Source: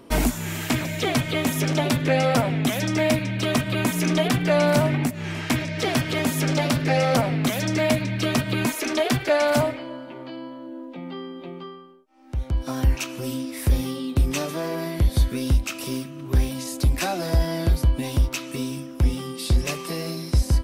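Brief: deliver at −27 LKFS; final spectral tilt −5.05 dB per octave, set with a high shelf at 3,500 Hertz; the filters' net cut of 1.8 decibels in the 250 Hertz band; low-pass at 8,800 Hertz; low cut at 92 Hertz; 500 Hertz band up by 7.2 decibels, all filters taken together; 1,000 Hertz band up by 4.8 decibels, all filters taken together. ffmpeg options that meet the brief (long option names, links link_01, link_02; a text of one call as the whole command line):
ffmpeg -i in.wav -af "highpass=92,lowpass=8800,equalizer=frequency=250:width_type=o:gain=-5,equalizer=frequency=500:width_type=o:gain=9,equalizer=frequency=1000:width_type=o:gain=3.5,highshelf=frequency=3500:gain=-6,volume=-5.5dB" out.wav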